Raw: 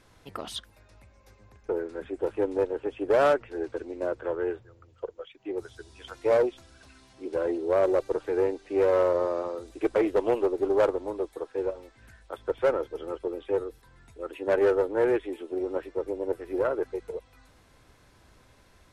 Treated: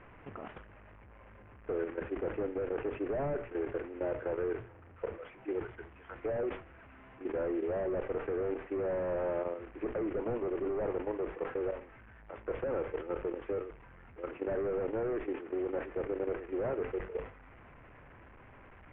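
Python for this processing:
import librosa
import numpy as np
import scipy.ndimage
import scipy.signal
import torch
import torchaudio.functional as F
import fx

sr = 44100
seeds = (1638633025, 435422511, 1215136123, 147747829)

y = fx.delta_mod(x, sr, bps=16000, step_db=-40.5)
y = scipy.signal.sosfilt(scipy.signal.butter(4, 2300.0, 'lowpass', fs=sr, output='sos'), y)
y = fx.level_steps(y, sr, step_db=11)
y = fx.rev_schroeder(y, sr, rt60_s=0.49, comb_ms=26, drr_db=17.0)
y = fx.sustainer(y, sr, db_per_s=130.0)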